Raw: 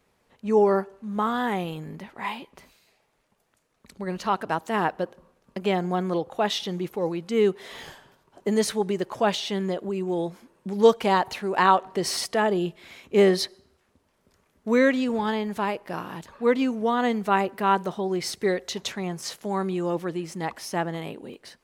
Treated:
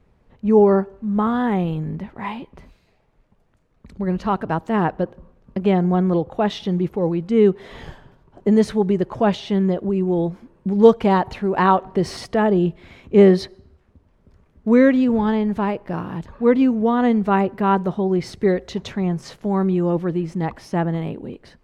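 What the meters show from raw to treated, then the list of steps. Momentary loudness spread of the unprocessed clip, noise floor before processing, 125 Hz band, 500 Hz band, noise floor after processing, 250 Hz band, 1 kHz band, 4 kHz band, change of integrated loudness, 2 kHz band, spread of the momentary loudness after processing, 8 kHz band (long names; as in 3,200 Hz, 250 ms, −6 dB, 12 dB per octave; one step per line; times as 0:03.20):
14 LU, −69 dBFS, +11.0 dB, +5.5 dB, −60 dBFS, +9.0 dB, +2.5 dB, −4.0 dB, +6.0 dB, 0.0 dB, 14 LU, can't be measured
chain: RIAA equalisation playback
level +2 dB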